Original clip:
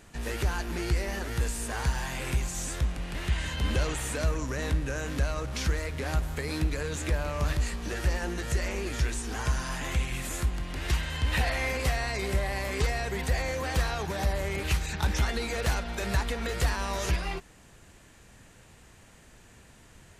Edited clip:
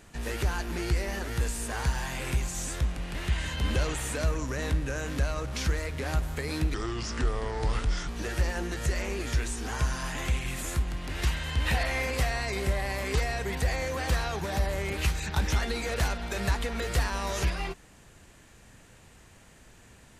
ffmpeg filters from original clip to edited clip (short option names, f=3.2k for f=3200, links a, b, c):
-filter_complex "[0:a]asplit=3[a][b][c];[a]atrim=end=6.744[d];[b]atrim=start=6.74:end=7.75,asetpts=PTS-STARTPTS,asetrate=33075,aresample=44100[e];[c]atrim=start=7.746[f];[d][e]acrossfade=d=0.004:c1=hsin:c2=hsin[g];[g][f]acrossfade=d=0.004:c1=hsin:c2=hsin"